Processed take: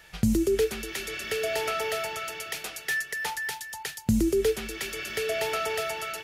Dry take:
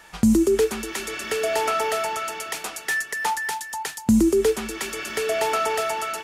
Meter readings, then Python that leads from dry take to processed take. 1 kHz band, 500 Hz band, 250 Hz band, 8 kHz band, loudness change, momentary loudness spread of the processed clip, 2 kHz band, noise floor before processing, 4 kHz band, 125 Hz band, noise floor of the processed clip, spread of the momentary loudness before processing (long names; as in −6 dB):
−9.0 dB, −5.0 dB, −7.0 dB, −5.5 dB, −5.5 dB, 9 LU, −3.5 dB, −41 dBFS, −2.0 dB, 0.0 dB, −45 dBFS, 10 LU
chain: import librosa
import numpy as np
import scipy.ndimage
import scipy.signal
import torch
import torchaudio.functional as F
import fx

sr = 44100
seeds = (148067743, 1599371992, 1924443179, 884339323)

y = fx.graphic_eq(x, sr, hz=(125, 250, 1000, 8000), db=(5, -10, -12, -7))